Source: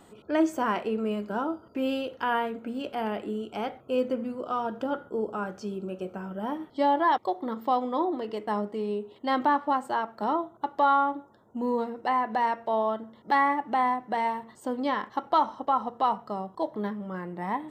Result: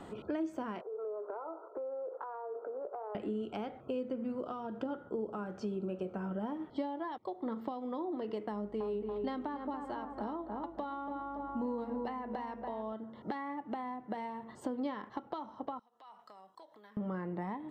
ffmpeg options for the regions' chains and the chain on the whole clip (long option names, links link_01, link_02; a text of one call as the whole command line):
ffmpeg -i in.wav -filter_complex "[0:a]asettb=1/sr,asplit=3[link_01][link_02][link_03];[link_01]atrim=end=0.814[link_04];[link_02]atrim=start=0.81:end=3.15,asetpts=PTS-STARTPTS,afade=type=in:duration=0.004:curve=qsin,afade=type=out:start_time=2.336:duration=0.004:curve=qsin,asuperpass=centerf=730:order=12:qfactor=0.73,acompressor=threshold=-41dB:ratio=2.5:attack=3.2:release=140:knee=1:detection=peak[link_05];[link_03]atrim=start=3.146[link_06];[link_04][link_05]acrossfade=duration=0.004:curve1=hsin:curve2=qsin[link_07];[link_07][link_06]acrossfade=duration=0.004:curve1=qsin:curve2=hsin,asettb=1/sr,asplit=3[link_08][link_09][link_10];[link_08]atrim=end=8.524[link_11];[link_09]atrim=start=8.52:end=12.93,asetpts=PTS-STARTPTS,afade=type=in:duration=0.004:curve=qsin,afade=type=out:start_time=4.406:duration=0.004:curve=qsin,aeval=exprs='val(0)+0.00158*(sin(2*PI*50*n/s)+sin(2*PI*2*50*n/s)/2+sin(2*PI*3*50*n/s)/3+sin(2*PI*4*50*n/s)/4+sin(2*PI*5*50*n/s)/5)':channel_layout=same,asplit=2[link_12][link_13];[link_13]adelay=283,lowpass=frequency=1700:poles=1,volume=-6.5dB,asplit=2[link_14][link_15];[link_15]adelay=283,lowpass=frequency=1700:poles=1,volume=0.5,asplit=2[link_16][link_17];[link_17]adelay=283,lowpass=frequency=1700:poles=1,volume=0.5,asplit=2[link_18][link_19];[link_19]adelay=283,lowpass=frequency=1700:poles=1,volume=0.5,asplit=2[link_20][link_21];[link_21]adelay=283,lowpass=frequency=1700:poles=1,volume=0.5,asplit=2[link_22][link_23];[link_23]adelay=283,lowpass=frequency=1700:poles=1,volume=0.5[link_24];[link_12][link_14][link_16][link_18][link_20][link_22][link_24]amix=inputs=7:normalize=0,atrim=end_sample=194481[link_25];[link_10]atrim=start=12.926[link_26];[link_11][link_25]acrossfade=duration=0.004:curve1=hsin:curve2=qsin[link_27];[link_27][link_26]acrossfade=duration=0.004:curve1=qsin:curve2=hsin,asettb=1/sr,asplit=3[link_28][link_29][link_30];[link_28]atrim=end=15.794[link_31];[link_29]atrim=start=15.79:end=16.97,asetpts=PTS-STARTPTS,afade=type=in:duration=0.004:curve=qsin,afade=type=out:start_time=1.176:duration=0.004:curve=qsin,acompressor=threshold=-35dB:ratio=16:attack=3.2:release=140:knee=1:detection=peak,aderivative[link_32];[link_30]atrim=start=16.966[link_33];[link_31][link_32]acrossfade=duration=0.004:curve1=hsin:curve2=qsin[link_34];[link_34][link_33]acrossfade=duration=0.004:curve1=qsin:curve2=hsin,acompressor=threshold=-43dB:ratio=3,aemphasis=mode=reproduction:type=75kf,acrossover=split=420|3000[link_35][link_36][link_37];[link_36]acompressor=threshold=-47dB:ratio=6[link_38];[link_35][link_38][link_37]amix=inputs=3:normalize=0,volume=6.5dB" out.wav